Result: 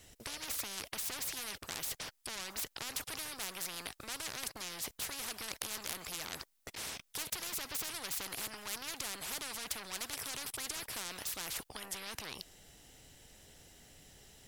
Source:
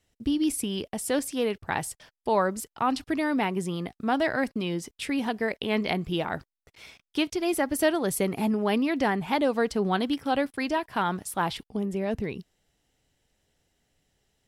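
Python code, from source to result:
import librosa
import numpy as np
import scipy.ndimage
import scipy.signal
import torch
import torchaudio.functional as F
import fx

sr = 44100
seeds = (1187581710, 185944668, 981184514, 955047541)

y = fx.high_shelf(x, sr, hz=4900.0, db=7.0)
y = 10.0 ** (-25.0 / 20.0) * np.tanh(y / 10.0 ** (-25.0 / 20.0))
y = fx.spectral_comp(y, sr, ratio=10.0)
y = y * librosa.db_to_amplitude(6.5)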